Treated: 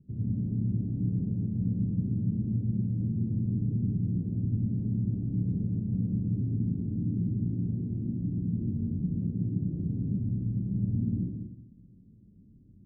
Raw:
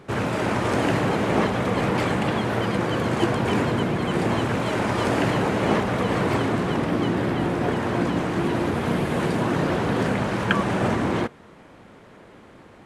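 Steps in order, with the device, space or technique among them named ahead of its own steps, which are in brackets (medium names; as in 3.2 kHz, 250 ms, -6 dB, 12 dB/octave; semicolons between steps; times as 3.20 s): club heard from the street (peak limiter -14 dBFS, peak gain reduction 8.5 dB; low-pass 210 Hz 24 dB/octave; reverberation RT60 0.80 s, pre-delay 58 ms, DRR -1.5 dB); trim -6 dB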